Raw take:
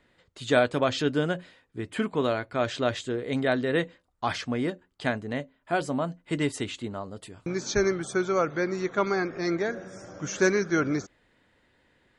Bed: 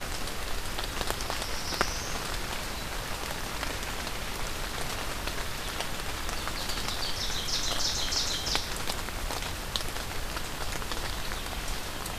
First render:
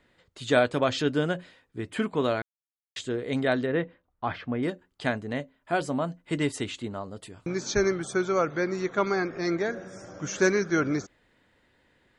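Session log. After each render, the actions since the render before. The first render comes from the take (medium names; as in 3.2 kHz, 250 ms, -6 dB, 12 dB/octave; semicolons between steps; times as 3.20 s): 2.42–2.96 s: mute; 3.66–4.63 s: distance through air 430 m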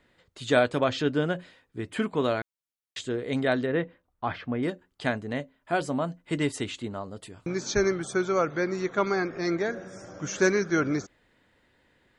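0.84–1.36 s: treble shelf 7 kHz -10.5 dB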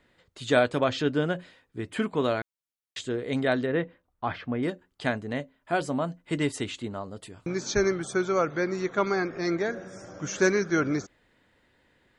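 no audible change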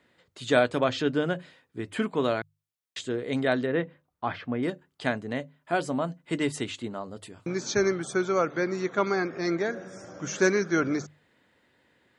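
high-pass 92 Hz; hum notches 50/100/150 Hz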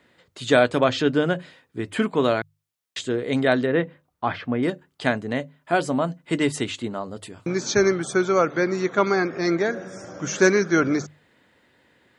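trim +5.5 dB; peak limiter -3 dBFS, peak gain reduction 2 dB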